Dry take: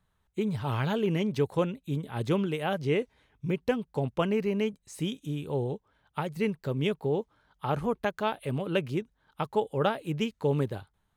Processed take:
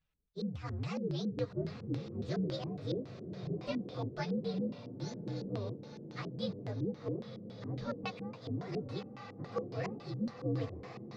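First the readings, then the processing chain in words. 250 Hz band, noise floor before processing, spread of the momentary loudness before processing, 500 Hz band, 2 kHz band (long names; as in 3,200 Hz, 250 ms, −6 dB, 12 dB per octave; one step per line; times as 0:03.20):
−7.0 dB, −74 dBFS, 8 LU, −10.5 dB, −12.5 dB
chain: partials spread apart or drawn together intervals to 125%
feedback delay with all-pass diffusion 997 ms, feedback 55%, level −9 dB
auto-filter low-pass square 3.6 Hz 330–4,100 Hz
level −7.5 dB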